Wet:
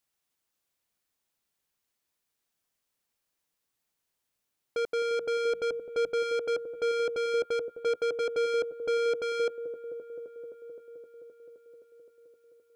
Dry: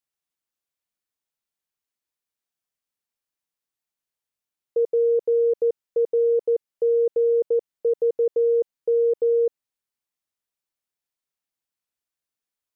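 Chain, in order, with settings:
0:04.86–0:06.10: mains-hum notches 50/100/150/200 Hz
soft clipping −34 dBFS, distortion −8 dB
on a send: delay with a low-pass on its return 260 ms, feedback 79%, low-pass 620 Hz, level −8 dB
on the sum: level +6.5 dB

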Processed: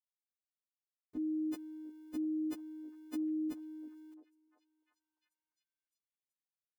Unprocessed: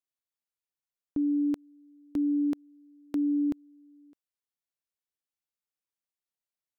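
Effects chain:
every partial snapped to a pitch grid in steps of 3 semitones
centre clipping without the shift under −59.5 dBFS
echo through a band-pass that steps 349 ms, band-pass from 300 Hz, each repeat 0.7 octaves, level −11 dB
level −8 dB

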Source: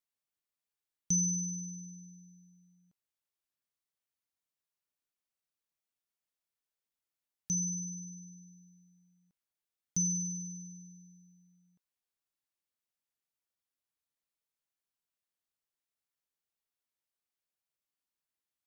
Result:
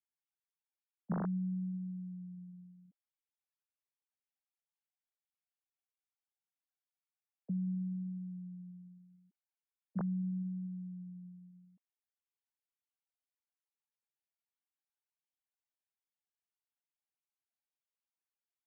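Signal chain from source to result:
three sine waves on the formant tracks
downward compressor 2 to 1, threshold −47 dBFS, peak gain reduction 10.5 dB
level +6 dB

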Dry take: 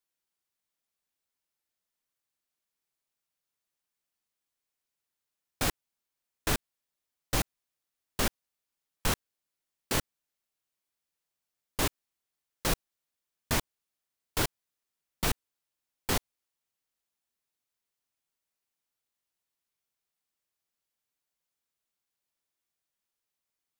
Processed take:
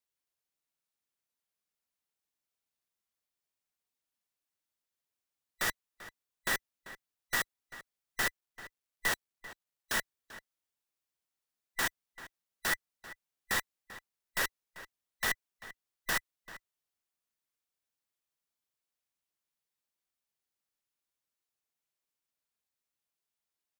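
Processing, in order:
frequency inversion band by band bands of 2,000 Hz
0:08.27–0:09.98: log-companded quantiser 8 bits
slap from a distant wall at 67 metres, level −15 dB
level −3.5 dB

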